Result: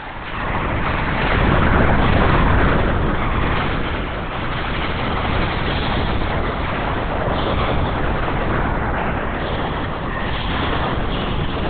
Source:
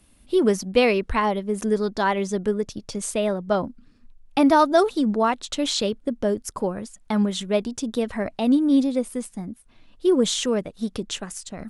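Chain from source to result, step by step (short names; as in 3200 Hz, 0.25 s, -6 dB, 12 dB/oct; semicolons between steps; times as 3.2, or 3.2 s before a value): HPF 51 Hz; tilt shelf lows +8 dB; notches 60/120/180/240/300/360/420/480 Hz; reverse; compressor 6:1, threshold -28 dBFS, peak gain reduction 19.5 dB; reverse; sine folder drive 17 dB, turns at -17.5 dBFS; on a send: reverse echo 0.911 s -5.5 dB; on the sum: Schroeder reverb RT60 3.6 s, combs from 30 ms, DRR -7 dB; LPC vocoder at 8 kHz whisper; mismatched tape noise reduction encoder only; gain -8.5 dB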